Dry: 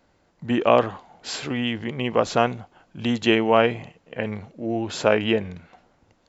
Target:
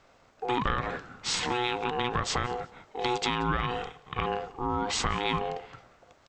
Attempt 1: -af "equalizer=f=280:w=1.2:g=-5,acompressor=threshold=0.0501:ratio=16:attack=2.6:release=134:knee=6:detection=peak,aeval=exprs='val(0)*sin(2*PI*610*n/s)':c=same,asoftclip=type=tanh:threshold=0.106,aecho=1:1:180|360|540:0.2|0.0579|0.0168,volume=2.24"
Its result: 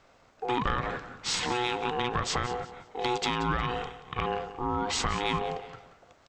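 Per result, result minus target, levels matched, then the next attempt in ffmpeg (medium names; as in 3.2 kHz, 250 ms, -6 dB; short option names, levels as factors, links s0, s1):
saturation: distortion +13 dB; echo-to-direct +9 dB
-af "equalizer=f=280:w=1.2:g=-5,acompressor=threshold=0.0501:ratio=16:attack=2.6:release=134:knee=6:detection=peak,aeval=exprs='val(0)*sin(2*PI*610*n/s)':c=same,asoftclip=type=tanh:threshold=0.251,aecho=1:1:180|360|540:0.2|0.0579|0.0168,volume=2.24"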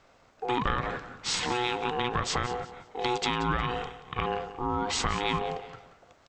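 echo-to-direct +9 dB
-af "equalizer=f=280:w=1.2:g=-5,acompressor=threshold=0.0501:ratio=16:attack=2.6:release=134:knee=6:detection=peak,aeval=exprs='val(0)*sin(2*PI*610*n/s)':c=same,asoftclip=type=tanh:threshold=0.251,aecho=1:1:180|360:0.0708|0.0205,volume=2.24"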